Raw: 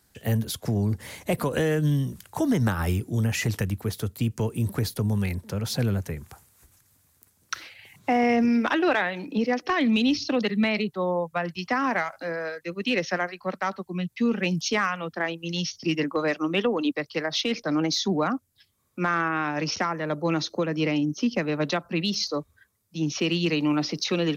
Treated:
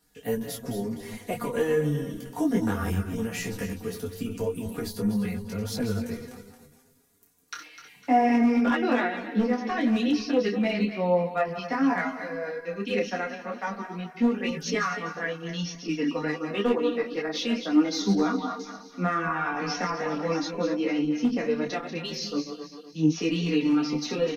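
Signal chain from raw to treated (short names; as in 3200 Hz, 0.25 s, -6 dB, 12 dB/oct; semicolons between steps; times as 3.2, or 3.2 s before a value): regenerating reverse delay 0.126 s, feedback 58%, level -8.5 dB; bell 350 Hz +5 dB 0.55 oct; comb 4.2 ms, depth 73%; 17.96–20.45 delay with a stepping band-pass 0.211 s, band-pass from 950 Hz, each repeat 1.4 oct, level -3 dB; flange 0.13 Hz, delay 6.4 ms, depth 5.3 ms, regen +14%; overloaded stage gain 14 dB; dynamic EQ 3600 Hz, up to -4 dB, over -45 dBFS, Q 0.94; detuned doubles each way 12 cents; gain +2 dB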